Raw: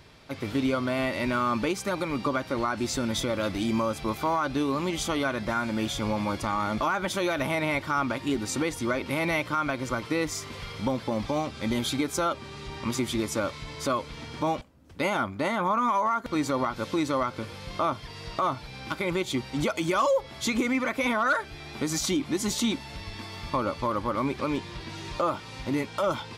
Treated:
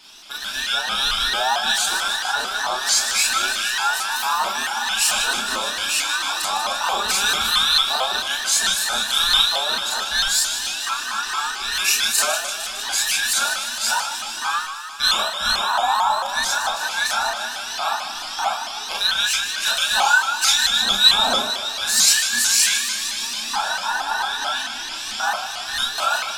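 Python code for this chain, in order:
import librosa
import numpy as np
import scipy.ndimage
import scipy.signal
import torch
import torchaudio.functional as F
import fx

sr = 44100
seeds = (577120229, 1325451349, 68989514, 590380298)

y = fx.band_invert(x, sr, width_hz=2000)
y = fx.high_shelf_res(y, sr, hz=1500.0, db=9.5, q=1.5)
y = fx.fixed_phaser(y, sr, hz=500.0, stages=6)
y = fx.echo_thinned(y, sr, ms=152, feedback_pct=74, hz=420.0, wet_db=-9)
y = fx.rev_schroeder(y, sr, rt60_s=0.3, comb_ms=27, drr_db=-3.0)
y = fx.vibrato_shape(y, sr, shape='saw_up', rate_hz=4.5, depth_cents=160.0)
y = y * librosa.db_to_amplitude(2.5)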